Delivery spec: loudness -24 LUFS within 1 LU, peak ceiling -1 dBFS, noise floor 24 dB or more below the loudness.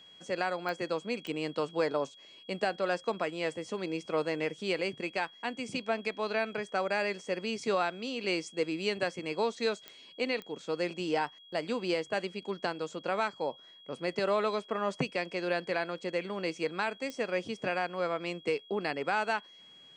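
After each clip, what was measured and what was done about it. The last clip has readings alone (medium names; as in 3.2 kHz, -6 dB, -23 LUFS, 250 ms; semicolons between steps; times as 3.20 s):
clicks found 5; steady tone 3.3 kHz; tone level -53 dBFS; loudness -33.5 LUFS; peak level -16.5 dBFS; loudness target -24.0 LUFS
-> de-click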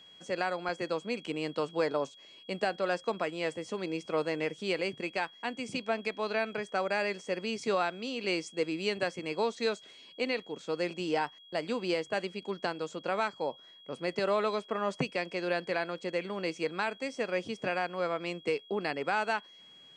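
clicks found 0; steady tone 3.3 kHz; tone level -53 dBFS
-> band-stop 3.3 kHz, Q 30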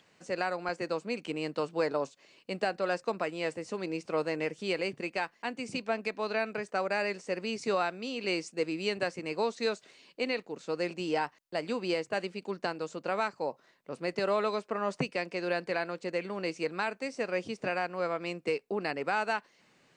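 steady tone not found; loudness -33.5 LUFS; peak level -18.0 dBFS; loudness target -24.0 LUFS
-> trim +9.5 dB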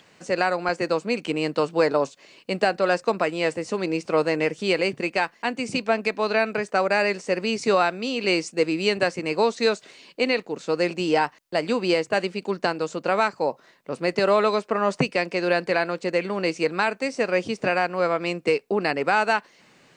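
loudness -24.0 LUFS; peak level -8.5 dBFS; noise floor -57 dBFS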